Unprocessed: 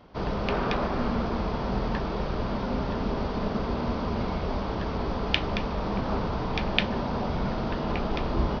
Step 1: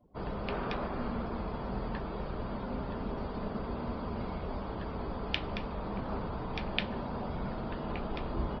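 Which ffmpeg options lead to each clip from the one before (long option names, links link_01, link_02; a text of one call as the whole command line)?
ffmpeg -i in.wav -af "afftdn=noise_reduction=23:noise_floor=-47,volume=-8dB" out.wav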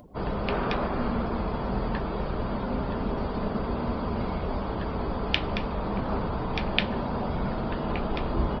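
ffmpeg -i in.wav -af "acompressor=mode=upward:threshold=-51dB:ratio=2.5,volume=7.5dB" out.wav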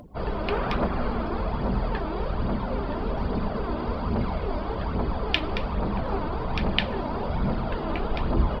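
ffmpeg -i in.wav -af "aphaser=in_gain=1:out_gain=1:delay=3.4:decay=0.45:speed=1.2:type=triangular" out.wav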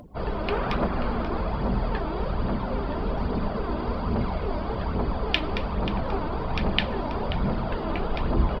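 ffmpeg -i in.wav -af "aecho=1:1:534:0.224" out.wav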